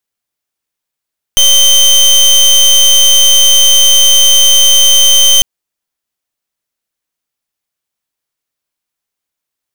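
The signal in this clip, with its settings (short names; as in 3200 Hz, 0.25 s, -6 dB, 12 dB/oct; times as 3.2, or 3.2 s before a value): pulse 3110 Hz, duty 26% -5.5 dBFS 4.05 s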